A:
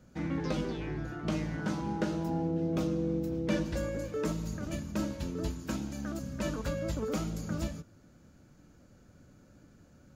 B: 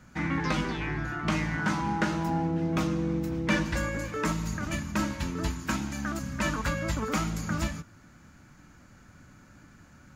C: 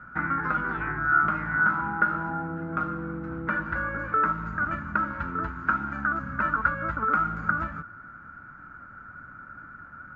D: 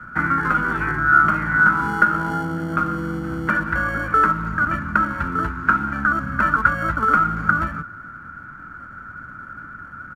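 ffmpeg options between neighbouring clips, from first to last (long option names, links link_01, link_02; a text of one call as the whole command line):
ffmpeg -i in.wav -af "equalizer=frequency=500:width_type=o:width=1:gain=-8,equalizer=frequency=1000:width_type=o:width=1:gain=7,equalizer=frequency=2000:width_type=o:width=1:gain=8,equalizer=frequency=8000:width_type=o:width=1:gain=3,volume=4.5dB" out.wav
ffmpeg -i in.wav -af "acompressor=threshold=-31dB:ratio=6,lowpass=frequency=1400:width_type=q:width=15" out.wav
ffmpeg -i in.wav -filter_complex "[0:a]acrossover=split=170|520|690[link_01][link_02][link_03][link_04];[link_03]acrusher=samples=35:mix=1:aa=0.000001[link_05];[link_01][link_02][link_05][link_04]amix=inputs=4:normalize=0,aresample=32000,aresample=44100,volume=8dB" out.wav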